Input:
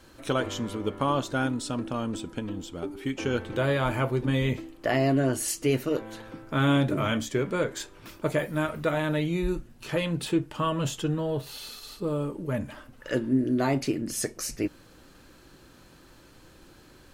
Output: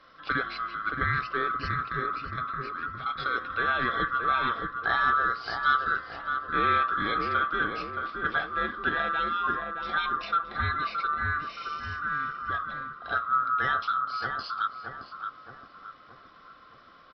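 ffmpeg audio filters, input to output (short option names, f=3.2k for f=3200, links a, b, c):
-filter_complex "[0:a]afftfilt=real='real(if(lt(b,960),b+48*(1-2*mod(floor(b/48),2)),b),0)':imag='imag(if(lt(b,960),b+48*(1-2*mod(floor(b/48),2)),b),0)':win_size=2048:overlap=0.75,aresample=11025,aresample=44100,asplit=2[a][b];[b]adelay=621,lowpass=f=1.2k:p=1,volume=-3dB,asplit=2[c][d];[d]adelay=621,lowpass=f=1.2k:p=1,volume=0.54,asplit=2[e][f];[f]adelay=621,lowpass=f=1.2k:p=1,volume=0.54,asplit=2[g][h];[h]adelay=621,lowpass=f=1.2k:p=1,volume=0.54,asplit=2[i][j];[j]adelay=621,lowpass=f=1.2k:p=1,volume=0.54,asplit=2[k][l];[l]adelay=621,lowpass=f=1.2k:p=1,volume=0.54,asplit=2[m][n];[n]adelay=621,lowpass=f=1.2k:p=1,volume=0.54[o];[a][c][e][g][i][k][m][o]amix=inputs=8:normalize=0,volume=-2dB"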